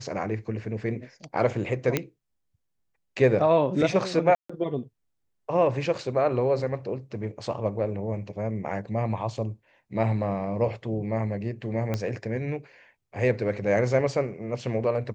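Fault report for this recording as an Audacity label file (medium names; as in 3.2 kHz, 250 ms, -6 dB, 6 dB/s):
1.970000	1.970000	pop -9 dBFS
4.350000	4.500000	dropout 145 ms
11.940000	11.940000	pop -15 dBFS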